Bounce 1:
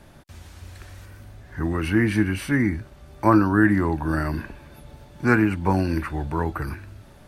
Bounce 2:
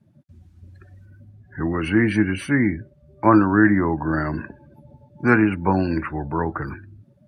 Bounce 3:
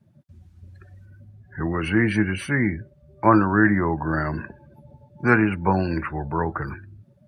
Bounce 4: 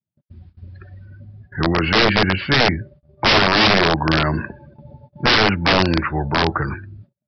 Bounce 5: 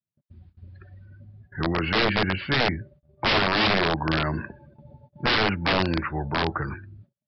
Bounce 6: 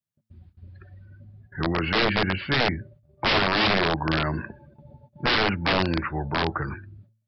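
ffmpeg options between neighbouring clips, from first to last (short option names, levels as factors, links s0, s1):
-af "highpass=110,afftdn=nr=27:nf=-40,volume=1.33"
-af "equalizer=f=280:w=4.1:g=-8"
-af "aresample=11025,aeval=exprs='(mod(5.62*val(0)+1,2)-1)/5.62':c=same,aresample=44100,agate=range=0.0126:threshold=0.00355:ratio=16:detection=peak,volume=2.24"
-af "lowpass=f=4800:w=0.5412,lowpass=f=4800:w=1.3066,volume=0.447"
-af "bandreject=f=110.4:t=h:w=4,bandreject=f=220.8:t=h:w=4"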